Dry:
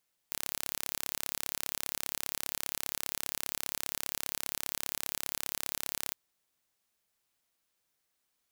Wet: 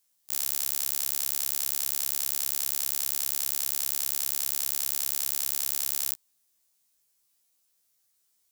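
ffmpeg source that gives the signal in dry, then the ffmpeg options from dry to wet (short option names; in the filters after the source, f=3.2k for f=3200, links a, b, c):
-f lavfi -i "aevalsrc='0.447*eq(mod(n,1260),0)':d=5.82:s=44100"
-af "bass=f=250:g=2,treble=f=4k:g=12,afftfilt=real='re*1.73*eq(mod(b,3),0)':imag='im*1.73*eq(mod(b,3),0)':win_size=2048:overlap=0.75"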